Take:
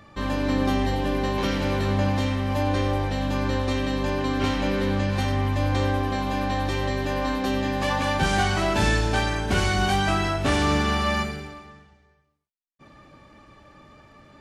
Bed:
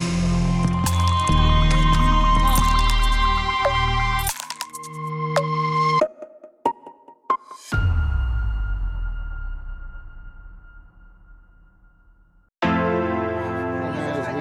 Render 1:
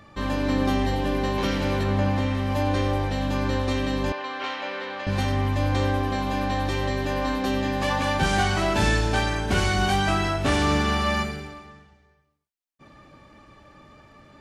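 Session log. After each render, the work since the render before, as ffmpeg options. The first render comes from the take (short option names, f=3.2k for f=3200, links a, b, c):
-filter_complex "[0:a]asettb=1/sr,asplit=3[a][b][c];[a]atrim=end=1.834[d];[b]atrim=start=1.83:end=2.35,asetpts=PTS-STARTPTS,afade=t=in:d=0.004:c=qsin,afade=t=out:st=0.516:d=0.004:c=qsin,acrossover=split=2900[e][f];[f]acompressor=threshold=-44dB:ratio=4:attack=1:release=60[g];[e][g]amix=inputs=2:normalize=0[h];[c]atrim=start=2.346[i];[d][h]acrossfade=d=0.004:c1=hsin:c2=qsin[j];[j][i]acrossfade=d=0.004:c1=qsin:c2=hsin,asettb=1/sr,asplit=3[k][l][m];[k]atrim=end=4.124[n];[l]atrim=start=4.12:end=5.07,asetpts=PTS-STARTPTS,afade=t=in:d=0.004:c=qsin,afade=t=out:st=0.946:d=0.004:c=qsin,highpass=690,lowpass=3.8k[o];[m]atrim=start=5.066[p];[n][o]acrossfade=d=0.004:c1=hsin:c2=qsin[q];[q][p]acrossfade=d=0.004:c1=qsin:c2=hsin"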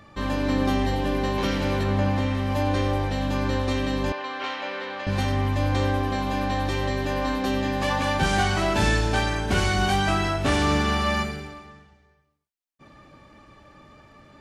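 -af anull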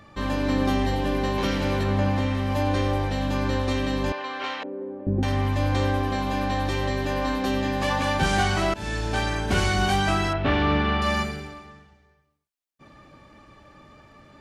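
-filter_complex "[0:a]asettb=1/sr,asplit=3[a][b][c];[a]atrim=end=4.634[d];[b]atrim=start=4.63:end=5.23,asetpts=PTS-STARTPTS,afade=t=in:d=0.004:c=qsin,afade=t=out:st=0.596:d=0.004:c=qsin,lowpass=f=350:t=q:w=2.7[e];[c]atrim=start=5.226[f];[d][e]acrossfade=d=0.004:c1=hsin:c2=qsin[g];[g][f]acrossfade=d=0.004:c1=qsin:c2=hsin,asettb=1/sr,asplit=3[h][i][j];[h]atrim=end=10.334[k];[i]atrim=start=10.33:end=11.02,asetpts=PTS-STARTPTS,afade=t=in:d=0.004:c=qsin,afade=t=out:st=0.686:d=0.004:c=qsin,lowpass=f=3.5k:w=0.5412,lowpass=f=3.5k:w=1.3066[l];[j]atrim=start=11.016[m];[k][l]acrossfade=d=0.004:c1=hsin:c2=qsin[n];[n][m]acrossfade=d=0.004:c1=qsin:c2=hsin,asplit=2[o][p];[o]atrim=end=8.74,asetpts=PTS-STARTPTS,afade=t=out:st=8.736:d=0.004:c=hsin:silence=0.105925[q];[p]atrim=start=8.74,asetpts=PTS-STARTPTS,afade=t=in:d=0.8:c=qsin:silence=0.105925[r];[q][r]concat=n=2:v=0:a=1"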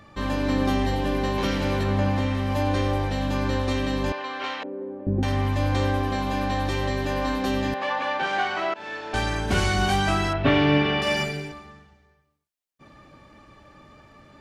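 -filter_complex "[0:a]asettb=1/sr,asplit=3[a][b][c];[a]atrim=end=7.744[d];[b]atrim=start=7.74:end=9.14,asetpts=PTS-STARTPTS,afade=t=in:d=0.004:c=qsin,afade=t=out:st=1.396:d=0.004:c=qsin,highpass=470,lowpass=3k[e];[c]atrim=start=9.136[f];[d][e]acrossfade=d=0.004:c1=hsin:c2=qsin[g];[g][f]acrossfade=d=0.004:c1=qsin:c2=hsin,asettb=1/sr,asplit=3[h][i][j];[h]atrim=end=10.434[k];[i]atrim=start=10.43:end=11.52,asetpts=PTS-STARTPTS,afade=t=in:d=0.004:c=qsin,afade=t=out:st=1.086:d=0.004:c=qsin,aecho=1:1:7.2:0.99,atrim=end_sample=48069[l];[j]atrim=start=11.516[m];[k][l]acrossfade=d=0.004:c1=hsin:c2=qsin[n];[n][m]acrossfade=d=0.004:c1=qsin:c2=hsin"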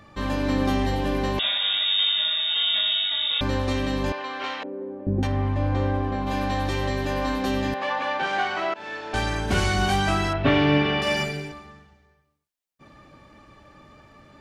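-filter_complex "[0:a]asettb=1/sr,asplit=3[a][b][c];[a]atrim=end=1.394[d];[b]atrim=start=1.39:end=3.41,asetpts=PTS-STARTPTS,afade=t=in:d=0.004:c=qsin,afade=t=out:st=2.016:d=0.004:c=qsin,lowpass=f=3.2k:t=q:w=0.5098,lowpass=f=3.2k:t=q:w=0.6013,lowpass=f=3.2k:t=q:w=0.9,lowpass=f=3.2k:t=q:w=2.563,afreqshift=-3800[e];[c]atrim=start=3.406[f];[d][e]acrossfade=d=0.004:c1=hsin:c2=qsin[g];[g][f]acrossfade=d=0.004:c1=qsin:c2=hsin,asplit=3[h][i][j];[h]afade=t=out:st=5.26:d=0.02[k];[i]lowpass=f=1.2k:p=1,afade=t=in:st=5.26:d=0.02,afade=t=out:st=6.26:d=0.02[l];[j]afade=t=in:st=6.26:d=0.02[m];[k][l][m]amix=inputs=3:normalize=0"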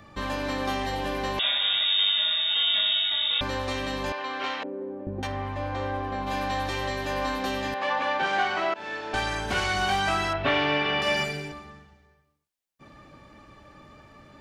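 -filter_complex "[0:a]acrossover=split=500|5000[a][b][c];[a]acompressor=threshold=-33dB:ratio=6[d];[c]alimiter=level_in=13dB:limit=-24dB:level=0:latency=1,volume=-13dB[e];[d][b][e]amix=inputs=3:normalize=0"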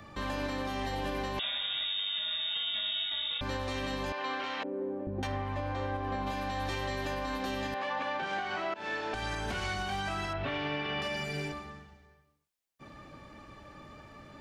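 -filter_complex "[0:a]acrossover=split=270[a][b];[b]acompressor=threshold=-32dB:ratio=2[c];[a][c]amix=inputs=2:normalize=0,alimiter=level_in=1dB:limit=-24dB:level=0:latency=1:release=184,volume=-1dB"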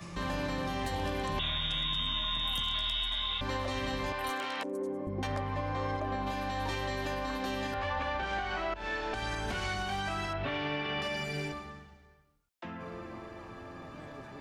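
-filter_complex "[1:a]volume=-22.5dB[a];[0:a][a]amix=inputs=2:normalize=0"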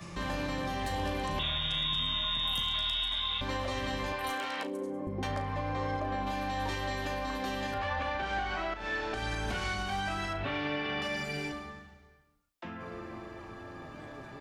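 -filter_complex "[0:a]asplit=2[a][b];[b]adelay=37,volume=-10dB[c];[a][c]amix=inputs=2:normalize=0,aecho=1:1:71|142|213|284|355:0.1|0.058|0.0336|0.0195|0.0113"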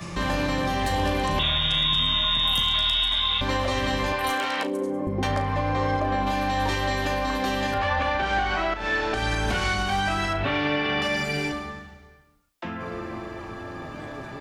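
-af "volume=9dB"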